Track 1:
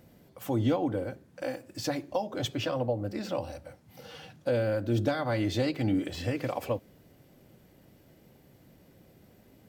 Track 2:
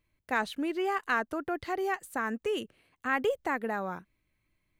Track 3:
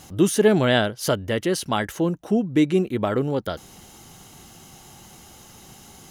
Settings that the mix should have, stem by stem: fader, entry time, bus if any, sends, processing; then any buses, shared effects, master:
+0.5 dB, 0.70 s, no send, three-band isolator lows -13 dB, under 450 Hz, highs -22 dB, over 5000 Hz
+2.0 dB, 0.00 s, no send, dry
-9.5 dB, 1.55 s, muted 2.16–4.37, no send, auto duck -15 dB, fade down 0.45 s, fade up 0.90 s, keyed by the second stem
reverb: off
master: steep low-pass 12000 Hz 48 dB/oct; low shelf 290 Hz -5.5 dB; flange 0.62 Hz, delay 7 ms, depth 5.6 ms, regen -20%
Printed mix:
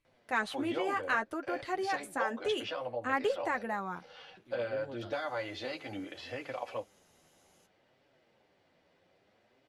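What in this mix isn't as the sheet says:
stem 1: entry 0.70 s -> 0.05 s; stem 3 -9.5 dB -> -17.0 dB

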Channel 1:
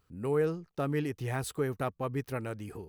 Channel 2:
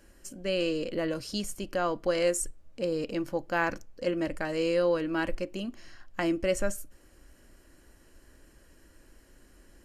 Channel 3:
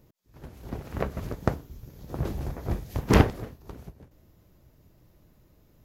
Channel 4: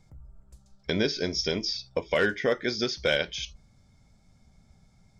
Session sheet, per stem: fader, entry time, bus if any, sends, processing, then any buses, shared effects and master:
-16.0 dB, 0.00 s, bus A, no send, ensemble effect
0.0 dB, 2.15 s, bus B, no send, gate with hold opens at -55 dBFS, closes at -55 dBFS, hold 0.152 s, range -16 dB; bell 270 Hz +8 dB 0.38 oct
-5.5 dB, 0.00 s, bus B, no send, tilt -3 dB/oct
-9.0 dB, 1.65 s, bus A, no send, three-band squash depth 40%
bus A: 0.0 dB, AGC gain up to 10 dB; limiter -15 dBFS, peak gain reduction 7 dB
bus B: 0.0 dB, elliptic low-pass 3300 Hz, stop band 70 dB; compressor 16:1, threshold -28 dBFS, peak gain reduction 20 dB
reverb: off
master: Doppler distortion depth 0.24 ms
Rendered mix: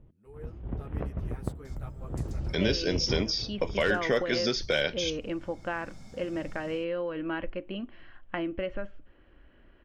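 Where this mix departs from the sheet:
stem 1 -16.0 dB -> -22.5 dB; stem 2: missing bell 270 Hz +8 dB 0.38 oct; master: missing Doppler distortion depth 0.24 ms

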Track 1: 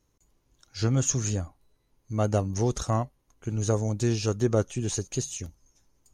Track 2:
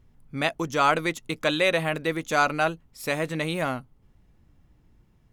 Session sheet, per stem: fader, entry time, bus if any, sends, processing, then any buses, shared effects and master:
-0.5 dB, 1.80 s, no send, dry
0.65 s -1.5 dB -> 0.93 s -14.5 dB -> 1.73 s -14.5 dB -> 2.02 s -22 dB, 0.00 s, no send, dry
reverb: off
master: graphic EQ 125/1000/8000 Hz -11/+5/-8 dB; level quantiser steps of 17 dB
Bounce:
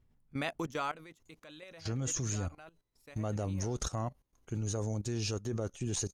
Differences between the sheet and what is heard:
stem 1: entry 1.80 s -> 1.05 s; master: missing graphic EQ 125/1000/8000 Hz -11/+5/-8 dB

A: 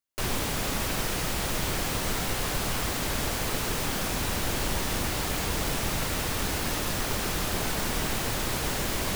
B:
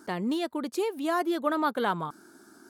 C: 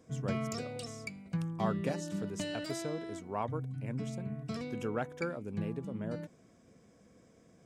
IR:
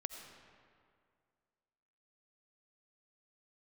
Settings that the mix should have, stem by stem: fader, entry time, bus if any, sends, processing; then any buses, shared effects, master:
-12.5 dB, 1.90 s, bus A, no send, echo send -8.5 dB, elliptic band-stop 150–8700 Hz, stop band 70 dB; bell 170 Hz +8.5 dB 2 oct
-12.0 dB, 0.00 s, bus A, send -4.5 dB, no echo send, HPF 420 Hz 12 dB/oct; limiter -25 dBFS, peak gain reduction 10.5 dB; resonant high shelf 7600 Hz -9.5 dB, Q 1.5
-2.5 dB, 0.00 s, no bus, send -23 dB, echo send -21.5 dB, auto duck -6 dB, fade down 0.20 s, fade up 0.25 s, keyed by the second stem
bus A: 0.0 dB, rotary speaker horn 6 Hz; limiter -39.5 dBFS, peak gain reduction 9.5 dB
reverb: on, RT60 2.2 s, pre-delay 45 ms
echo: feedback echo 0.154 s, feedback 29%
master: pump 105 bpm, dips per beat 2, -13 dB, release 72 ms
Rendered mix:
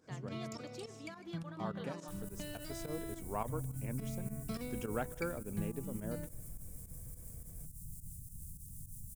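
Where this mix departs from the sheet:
stem A: missing bell 170 Hz +8.5 dB 2 oct; reverb return -7.5 dB

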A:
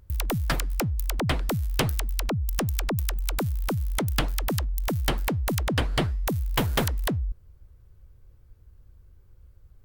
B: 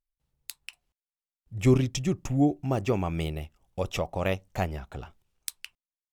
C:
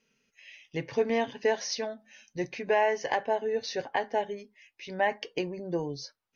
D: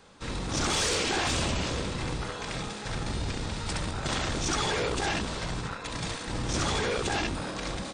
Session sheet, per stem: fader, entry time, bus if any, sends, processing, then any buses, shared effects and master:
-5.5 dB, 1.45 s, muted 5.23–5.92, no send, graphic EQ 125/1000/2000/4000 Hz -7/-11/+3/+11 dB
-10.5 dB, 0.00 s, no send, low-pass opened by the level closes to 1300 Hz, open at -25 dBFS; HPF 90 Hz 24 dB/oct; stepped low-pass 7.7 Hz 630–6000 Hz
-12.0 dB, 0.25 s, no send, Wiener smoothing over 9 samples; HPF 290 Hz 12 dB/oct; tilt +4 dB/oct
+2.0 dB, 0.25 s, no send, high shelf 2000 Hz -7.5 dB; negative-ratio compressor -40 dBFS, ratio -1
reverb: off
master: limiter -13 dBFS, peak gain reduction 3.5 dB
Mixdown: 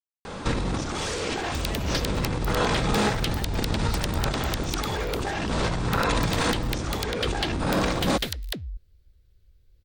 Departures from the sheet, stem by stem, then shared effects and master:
stem B: muted; stem D +2.0 dB -> +13.5 dB

